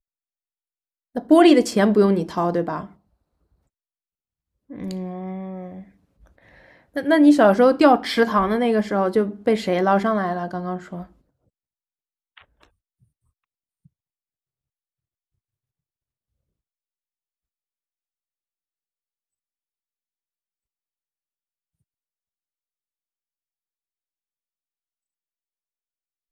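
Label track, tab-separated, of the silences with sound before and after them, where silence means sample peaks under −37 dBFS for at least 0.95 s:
2.860000	4.700000	silence
5.820000	6.960000	silence
11.040000	12.380000	silence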